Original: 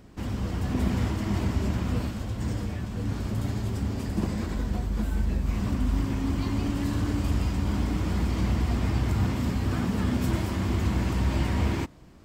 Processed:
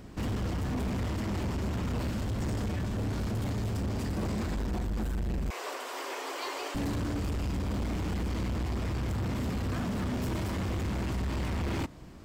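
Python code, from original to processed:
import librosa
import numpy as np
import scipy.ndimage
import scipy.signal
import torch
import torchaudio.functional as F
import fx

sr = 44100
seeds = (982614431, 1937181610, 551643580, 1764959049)

y = fx.steep_highpass(x, sr, hz=400.0, slope=48, at=(5.5, 6.75))
y = fx.rider(y, sr, range_db=4, speed_s=0.5)
y = np.clip(y, -10.0 ** (-29.0 / 20.0), 10.0 ** (-29.0 / 20.0))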